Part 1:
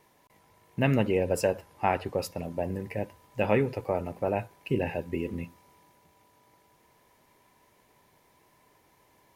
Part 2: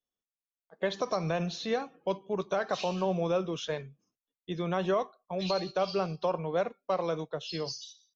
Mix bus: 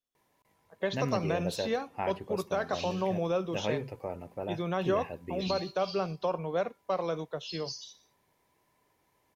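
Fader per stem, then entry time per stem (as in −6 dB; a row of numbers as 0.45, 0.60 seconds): −8.5, −1.0 decibels; 0.15, 0.00 seconds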